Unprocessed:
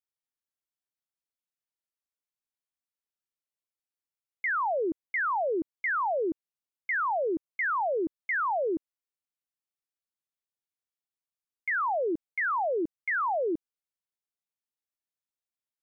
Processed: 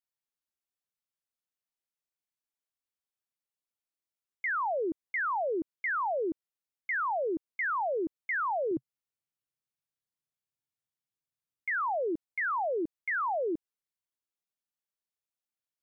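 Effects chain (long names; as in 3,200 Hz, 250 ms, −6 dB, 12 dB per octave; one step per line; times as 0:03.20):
0:08.71–0:11.76: parametric band 130 Hz +13 dB 0.96 octaves
level −2.5 dB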